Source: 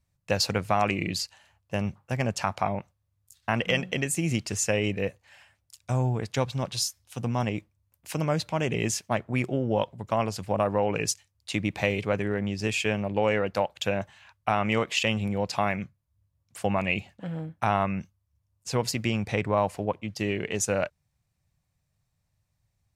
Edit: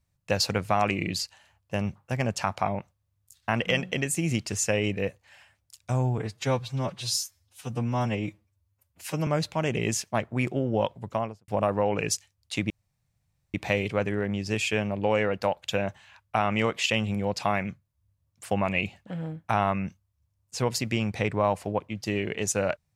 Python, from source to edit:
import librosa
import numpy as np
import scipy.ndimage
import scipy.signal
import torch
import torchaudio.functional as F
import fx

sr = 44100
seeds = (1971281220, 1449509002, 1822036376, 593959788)

y = fx.studio_fade_out(x, sr, start_s=10.02, length_s=0.43)
y = fx.edit(y, sr, fx.stretch_span(start_s=6.18, length_s=2.06, factor=1.5),
    fx.insert_room_tone(at_s=11.67, length_s=0.84), tone=tone)